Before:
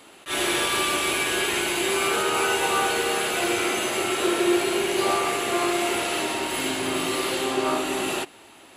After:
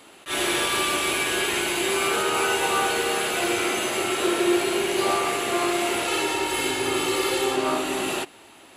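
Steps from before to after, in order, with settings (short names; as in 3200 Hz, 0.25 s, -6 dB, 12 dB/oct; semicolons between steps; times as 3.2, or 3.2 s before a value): 6.07–7.56 comb 2.3 ms, depth 65%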